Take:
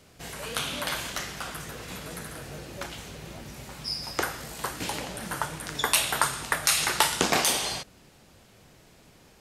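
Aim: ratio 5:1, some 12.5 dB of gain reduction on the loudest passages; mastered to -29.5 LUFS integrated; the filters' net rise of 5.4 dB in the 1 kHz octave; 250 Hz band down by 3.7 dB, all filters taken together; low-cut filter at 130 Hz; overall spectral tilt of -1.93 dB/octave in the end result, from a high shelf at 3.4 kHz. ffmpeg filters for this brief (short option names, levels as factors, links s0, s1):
-af "highpass=130,equalizer=f=250:t=o:g=-5,equalizer=f=1000:t=o:g=6.5,highshelf=f=3400:g=3.5,acompressor=threshold=0.0355:ratio=5,volume=1.5"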